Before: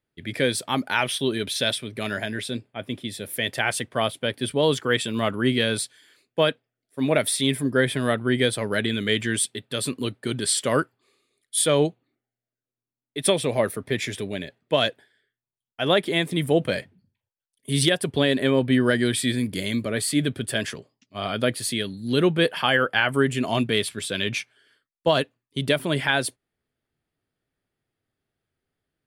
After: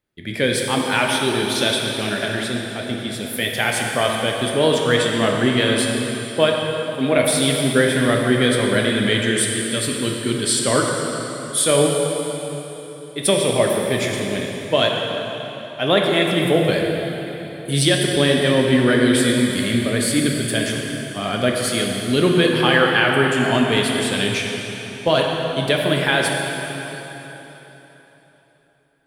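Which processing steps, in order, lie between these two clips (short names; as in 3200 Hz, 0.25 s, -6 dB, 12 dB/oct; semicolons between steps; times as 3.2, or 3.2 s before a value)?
plate-style reverb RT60 3.8 s, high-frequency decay 0.85×, DRR -0.5 dB; gain +2.5 dB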